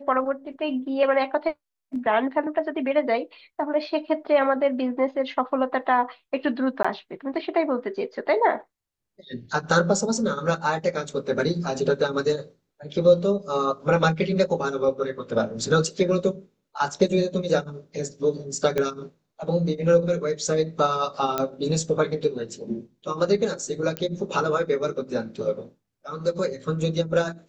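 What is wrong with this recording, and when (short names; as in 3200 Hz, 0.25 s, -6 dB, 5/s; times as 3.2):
6.83–6.84 gap 15 ms
18.78 pop -12 dBFS
21.38 pop -10 dBFS
23.97 pop -13 dBFS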